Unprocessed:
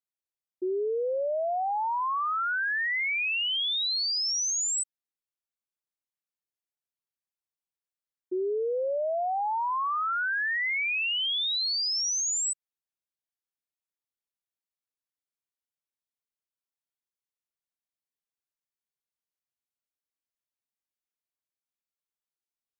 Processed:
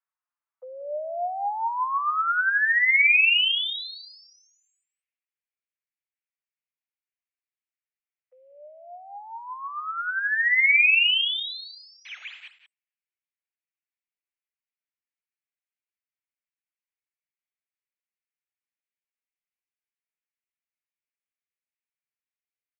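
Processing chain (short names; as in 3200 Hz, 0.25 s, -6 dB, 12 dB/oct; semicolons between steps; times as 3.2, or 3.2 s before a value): low-pass opened by the level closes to 1600 Hz; in parallel at 0 dB: vocal rider; on the sum: flange 0.13 Hz, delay 5 ms, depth 6.5 ms, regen +48%; frequency shift -16 Hz; 12.05–12.48 Schmitt trigger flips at -38.5 dBFS; mistuned SSB +160 Hz 360–3000 Hz; on a send: echo 0.182 s -12 dB; on the sum: high-pass sweep 1100 Hz -> 2300 Hz, 1.09–2.84; gain +1.5 dB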